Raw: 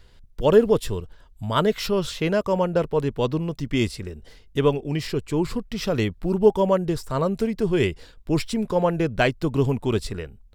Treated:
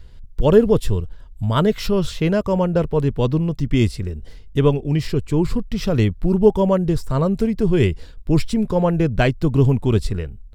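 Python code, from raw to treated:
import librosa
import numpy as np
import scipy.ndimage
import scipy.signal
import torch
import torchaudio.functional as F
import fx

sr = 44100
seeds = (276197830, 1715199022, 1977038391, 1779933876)

y = fx.low_shelf(x, sr, hz=210.0, db=12.0)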